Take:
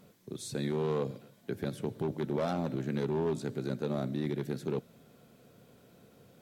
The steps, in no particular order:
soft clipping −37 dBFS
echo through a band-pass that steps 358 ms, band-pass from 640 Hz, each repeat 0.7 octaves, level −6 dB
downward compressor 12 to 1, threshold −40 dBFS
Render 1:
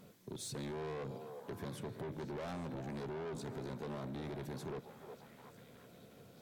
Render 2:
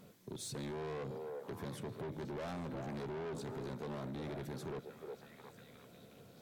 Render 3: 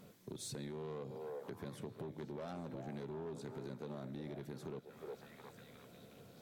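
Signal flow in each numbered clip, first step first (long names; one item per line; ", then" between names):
soft clipping, then echo through a band-pass that steps, then downward compressor
echo through a band-pass that steps, then soft clipping, then downward compressor
echo through a band-pass that steps, then downward compressor, then soft clipping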